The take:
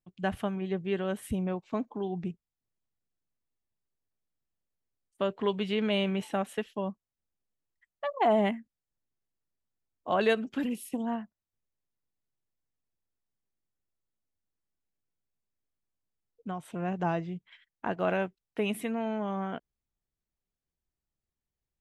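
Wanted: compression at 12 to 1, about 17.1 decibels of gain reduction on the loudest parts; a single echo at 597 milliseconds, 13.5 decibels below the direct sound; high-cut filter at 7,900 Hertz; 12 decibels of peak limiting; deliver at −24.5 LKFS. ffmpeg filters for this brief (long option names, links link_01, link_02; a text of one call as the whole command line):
ffmpeg -i in.wav -af "lowpass=7900,acompressor=threshold=-38dB:ratio=12,alimiter=level_in=11.5dB:limit=-24dB:level=0:latency=1,volume=-11.5dB,aecho=1:1:597:0.211,volume=21.5dB" out.wav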